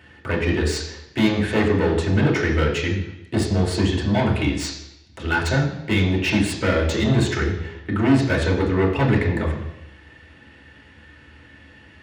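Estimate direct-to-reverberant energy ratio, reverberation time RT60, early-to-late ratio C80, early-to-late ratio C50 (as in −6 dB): −3.0 dB, 0.90 s, 8.5 dB, 6.0 dB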